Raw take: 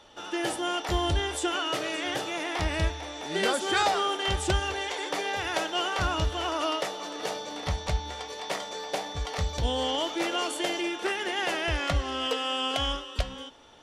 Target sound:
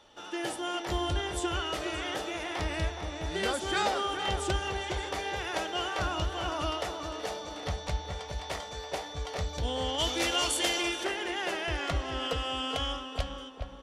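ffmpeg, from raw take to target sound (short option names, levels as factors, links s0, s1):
-filter_complex "[0:a]asplit=3[s0][s1][s2];[s0]afade=t=out:st=9.98:d=0.02[s3];[s1]highshelf=f=2100:g=11.5,afade=t=in:st=9.98:d=0.02,afade=t=out:st=11.03:d=0.02[s4];[s2]afade=t=in:st=11.03:d=0.02[s5];[s3][s4][s5]amix=inputs=3:normalize=0,asplit=2[s6][s7];[s7]adelay=418,lowpass=f=1300:p=1,volume=0.562,asplit=2[s8][s9];[s9]adelay=418,lowpass=f=1300:p=1,volume=0.44,asplit=2[s10][s11];[s11]adelay=418,lowpass=f=1300:p=1,volume=0.44,asplit=2[s12][s13];[s13]adelay=418,lowpass=f=1300:p=1,volume=0.44,asplit=2[s14][s15];[s15]adelay=418,lowpass=f=1300:p=1,volume=0.44[s16];[s6][s8][s10][s12][s14][s16]amix=inputs=6:normalize=0,volume=0.596"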